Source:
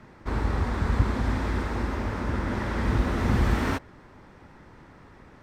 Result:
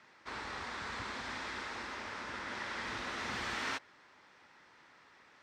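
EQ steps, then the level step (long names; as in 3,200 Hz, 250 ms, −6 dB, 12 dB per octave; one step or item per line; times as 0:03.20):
high-frequency loss of the air 140 metres
first difference
+9.0 dB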